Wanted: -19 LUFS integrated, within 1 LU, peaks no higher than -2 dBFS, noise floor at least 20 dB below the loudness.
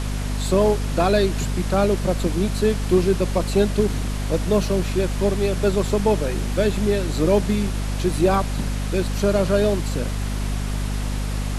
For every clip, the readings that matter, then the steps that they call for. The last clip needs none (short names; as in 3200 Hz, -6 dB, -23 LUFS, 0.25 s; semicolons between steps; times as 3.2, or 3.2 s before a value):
hum 50 Hz; harmonics up to 250 Hz; hum level -22 dBFS; noise floor -25 dBFS; noise floor target -42 dBFS; loudness -21.5 LUFS; peak -6.0 dBFS; loudness target -19.0 LUFS
-> notches 50/100/150/200/250 Hz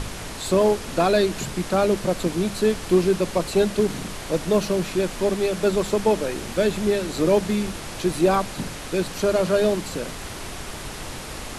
hum none; noise floor -35 dBFS; noise floor target -43 dBFS
-> noise print and reduce 8 dB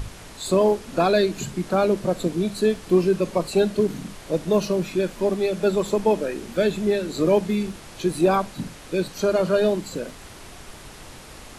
noise floor -42 dBFS; noise floor target -43 dBFS
-> noise print and reduce 6 dB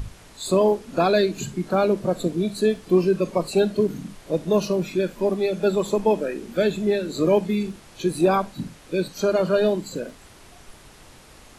noise floor -48 dBFS; loudness -23.0 LUFS; peak -8.0 dBFS; loudness target -19.0 LUFS
-> gain +4 dB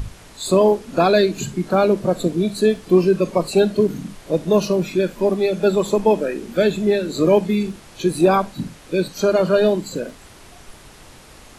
loudness -19.0 LUFS; peak -4.0 dBFS; noise floor -44 dBFS